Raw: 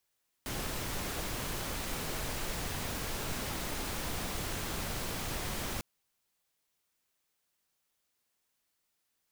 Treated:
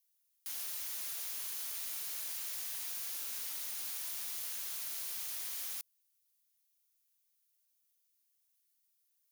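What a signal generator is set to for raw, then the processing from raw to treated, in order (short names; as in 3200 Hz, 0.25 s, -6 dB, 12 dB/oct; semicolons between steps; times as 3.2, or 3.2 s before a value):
noise pink, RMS -36.5 dBFS 5.35 s
differentiator; notch 7800 Hz, Q 8.9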